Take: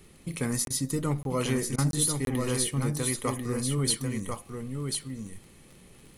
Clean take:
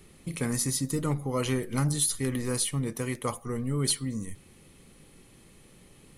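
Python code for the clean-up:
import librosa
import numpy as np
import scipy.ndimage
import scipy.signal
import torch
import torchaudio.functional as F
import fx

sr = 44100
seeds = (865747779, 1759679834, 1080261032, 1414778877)

y = fx.fix_declick_ar(x, sr, threshold=6.5)
y = fx.fix_interpolate(y, sr, at_s=(0.65, 1.23, 1.91, 2.25), length_ms=22.0)
y = fx.fix_interpolate(y, sr, at_s=(0.68, 1.76), length_ms=21.0)
y = fx.fix_echo_inverse(y, sr, delay_ms=1042, level_db=-5.0)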